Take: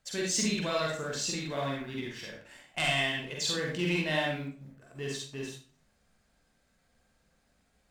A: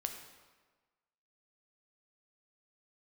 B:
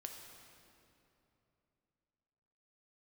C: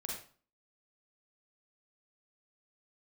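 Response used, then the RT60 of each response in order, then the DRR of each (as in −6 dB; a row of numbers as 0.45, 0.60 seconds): C; 1.4, 3.0, 0.45 seconds; 4.5, 2.0, −2.5 decibels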